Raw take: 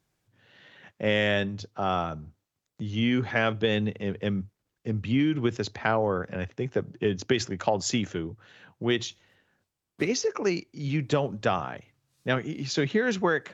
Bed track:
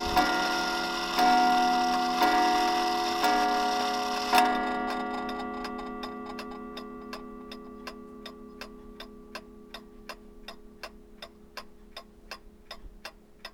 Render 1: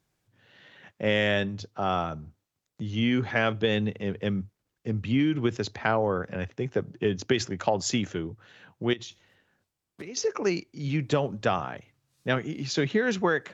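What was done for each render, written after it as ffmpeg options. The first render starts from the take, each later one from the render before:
-filter_complex "[0:a]asettb=1/sr,asplit=3[s0][s1][s2];[s0]atrim=end=8.934[s3];[s1]atrim=start=8.93:end=10.17,asetpts=PTS-STARTPTS,afade=t=in:d=0.004:c=qsin,afade=t=out:st=1.236:d=0.004:c=qsin,acompressor=threshold=0.0158:ratio=8:attack=3.2:release=140:knee=1:detection=peak[s4];[s2]atrim=start=10.166[s5];[s3][s4]acrossfade=d=0.004:c1=hsin:c2=qsin[s6];[s6][s5]acrossfade=d=0.004:c1=qsin:c2=hsin"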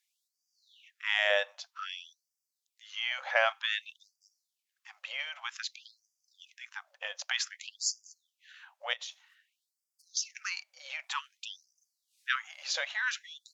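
-af "afftfilt=real='re*gte(b*sr/1024,480*pow(4700/480,0.5+0.5*sin(2*PI*0.53*pts/sr)))':imag='im*gte(b*sr/1024,480*pow(4700/480,0.5+0.5*sin(2*PI*0.53*pts/sr)))':win_size=1024:overlap=0.75"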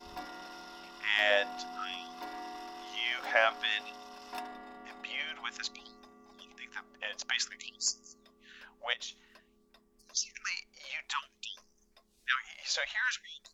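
-filter_complex "[1:a]volume=0.106[s0];[0:a][s0]amix=inputs=2:normalize=0"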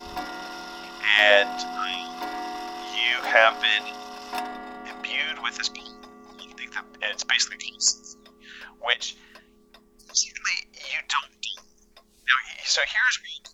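-af "volume=3.35,alimiter=limit=0.794:level=0:latency=1"

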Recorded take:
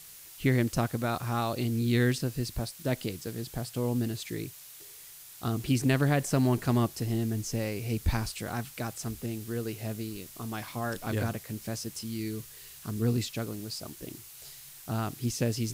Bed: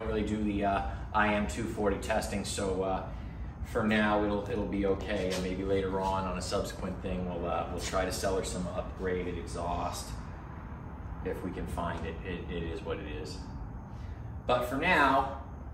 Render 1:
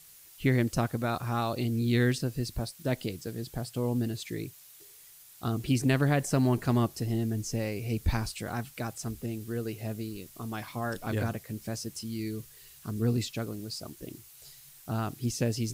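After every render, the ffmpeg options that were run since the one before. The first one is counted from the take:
-af "afftdn=nr=6:nf=-49"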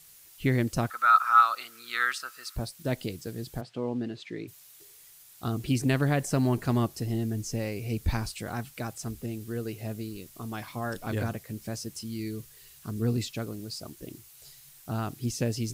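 -filter_complex "[0:a]asettb=1/sr,asplit=3[s0][s1][s2];[s0]atrim=end=0.904[s3];[s1]atrim=start=0.9:end=2.56,asetpts=PTS-STARTPTS,afade=t=in:d=0.004:c=qsin,afade=t=out:st=1.656:d=0.004:c=qsin,highpass=f=1300:t=q:w=14[s4];[s2]atrim=start=2.556[s5];[s3][s4]acrossfade=d=0.004:c1=hsin:c2=qsin[s6];[s6][s5]acrossfade=d=0.004:c1=qsin:c2=hsin,asplit=3[s7][s8][s9];[s7]afade=t=out:st=3.6:d=0.02[s10];[s8]highpass=190,lowpass=3400,afade=t=in:st=3.6:d=0.02,afade=t=out:st=4.47:d=0.02[s11];[s9]afade=t=in:st=4.47:d=0.02[s12];[s10][s11][s12]amix=inputs=3:normalize=0"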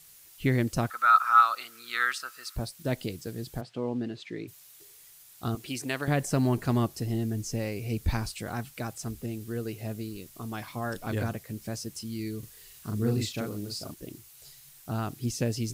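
-filter_complex "[0:a]asettb=1/sr,asplit=3[s0][s1][s2];[s0]atrim=end=5.554[s3];[s1]atrim=start=5.55:end=6.08,asetpts=PTS-STARTPTS,afade=t=in:d=0.004:c=qsin,afade=t=out:st=0.526:d=0.004:c=qsin,highpass=f=700:p=1[s4];[s2]atrim=start=6.076[s5];[s3][s4]acrossfade=d=0.004:c1=hsin:c2=qsin[s6];[s6][s5]acrossfade=d=0.004:c1=qsin:c2=hsin,asettb=1/sr,asplit=3[s7][s8][s9];[s7]atrim=end=12.394[s10];[s8]atrim=start=12.39:end=13.94,asetpts=PTS-STARTPTS,afade=t=in:d=0.004:c=qsin,afade=t=out:st=1.546:d=0.004:c=qsin,asplit=2[s11][s12];[s12]adelay=39,volume=0.708[s13];[s11][s13]amix=inputs=2:normalize=0,atrim=end_sample=68355[s14];[s9]atrim=start=13.936[s15];[s10][s14]acrossfade=d=0.004:c1=hsin:c2=qsin[s16];[s16][s15]acrossfade=d=0.004:c1=qsin:c2=hsin"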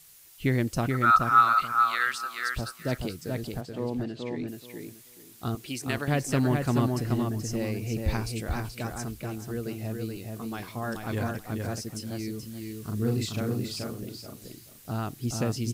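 -filter_complex "[0:a]asplit=2[s0][s1];[s1]adelay=429,lowpass=f=4000:p=1,volume=0.668,asplit=2[s2][s3];[s3]adelay=429,lowpass=f=4000:p=1,volume=0.2,asplit=2[s4][s5];[s5]adelay=429,lowpass=f=4000:p=1,volume=0.2[s6];[s0][s2][s4][s6]amix=inputs=4:normalize=0"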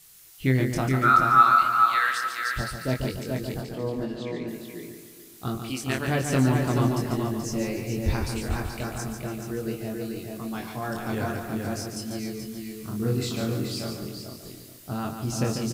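-filter_complex "[0:a]asplit=2[s0][s1];[s1]adelay=23,volume=0.668[s2];[s0][s2]amix=inputs=2:normalize=0,aecho=1:1:144|288|432|576|720:0.447|0.179|0.0715|0.0286|0.0114"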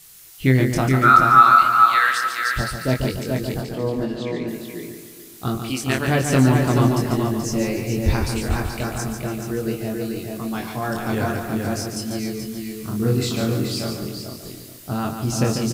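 -af "volume=2,alimiter=limit=0.891:level=0:latency=1"

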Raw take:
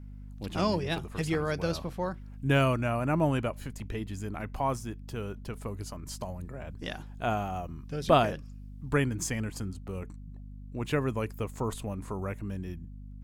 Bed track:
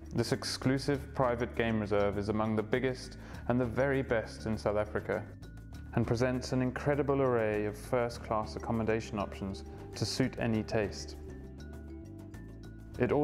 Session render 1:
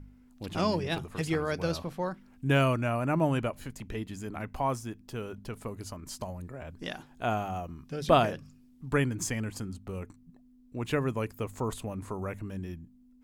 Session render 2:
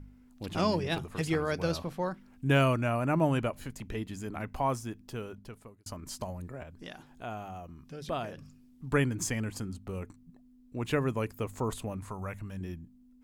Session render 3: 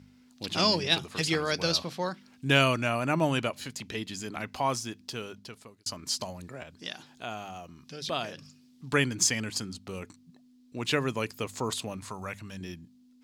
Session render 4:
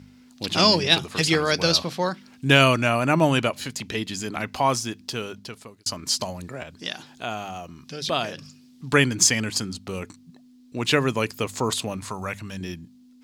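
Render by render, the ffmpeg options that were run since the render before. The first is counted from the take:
-af "bandreject=f=50:t=h:w=4,bandreject=f=100:t=h:w=4,bandreject=f=150:t=h:w=4,bandreject=f=200:t=h:w=4"
-filter_complex "[0:a]asettb=1/sr,asplit=3[s0][s1][s2];[s0]atrim=end=6.634[s3];[s1]atrim=start=6.63:end=8.38,asetpts=PTS-STARTPTS,afade=t=in:d=0.004:c=qsin,afade=t=out:st=1.746:d=0.004:c=qsin,acompressor=threshold=0.00251:ratio=1.5:attack=3.2:release=140:knee=1:detection=peak[s4];[s2]atrim=start=8.376[s5];[s3][s4]acrossfade=d=0.004:c1=hsin:c2=qsin[s6];[s6][s5]acrossfade=d=0.004:c1=qsin:c2=hsin,asettb=1/sr,asplit=3[s7][s8][s9];[s7]atrim=end=11.974[s10];[s8]atrim=start=11.97:end=12.61,asetpts=PTS-STARTPTS,afade=t=in:d=0.004:c=qsin,afade=t=out:st=0.636:d=0.004:c=qsin,equalizer=f=350:w=1.2:g=-9.5[s11];[s9]atrim=start=12.606[s12];[s10][s11]acrossfade=d=0.004:c1=hsin:c2=qsin[s13];[s13][s12]acrossfade=d=0.004:c1=qsin:c2=hsin,asplit=2[s14][s15];[s14]atrim=end=5.86,asetpts=PTS-STARTPTS,afade=t=out:st=5.07:d=0.79[s16];[s15]atrim=start=5.86,asetpts=PTS-STARTPTS,afade=t=in:d=0.004:c=hsin[s17];[s16][s17]concat=n=2:v=0:a=1"
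-af "highpass=120,equalizer=f=4500:t=o:w=1.8:g=15"
-af "volume=2.24,alimiter=limit=0.794:level=0:latency=1"

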